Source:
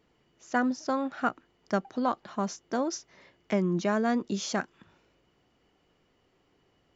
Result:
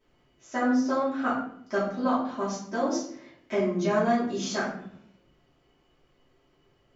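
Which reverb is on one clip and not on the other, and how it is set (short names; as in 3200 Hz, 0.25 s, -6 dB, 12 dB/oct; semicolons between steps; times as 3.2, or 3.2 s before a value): shoebox room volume 100 m³, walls mixed, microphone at 2.8 m; gain -9 dB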